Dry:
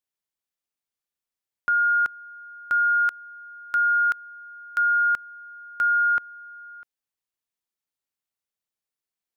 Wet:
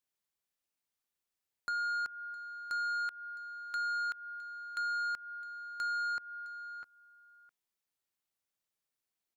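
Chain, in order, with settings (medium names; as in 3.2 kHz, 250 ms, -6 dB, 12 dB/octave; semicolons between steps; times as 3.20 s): compression 20:1, threshold -28 dBFS, peak gain reduction 9.5 dB; saturation -31.5 dBFS, distortion -13 dB; delay 661 ms -18.5 dB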